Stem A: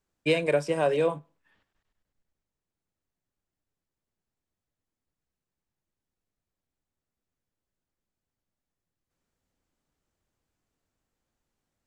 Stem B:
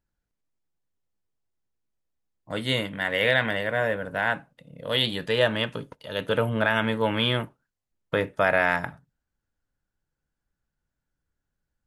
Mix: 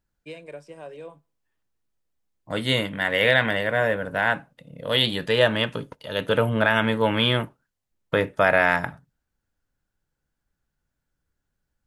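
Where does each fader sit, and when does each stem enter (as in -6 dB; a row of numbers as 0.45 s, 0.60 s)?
-15.5 dB, +3.0 dB; 0.00 s, 0.00 s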